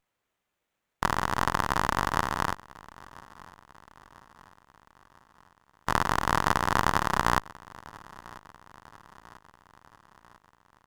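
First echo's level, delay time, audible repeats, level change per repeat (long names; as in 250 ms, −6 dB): −22.0 dB, 994 ms, 3, −5.0 dB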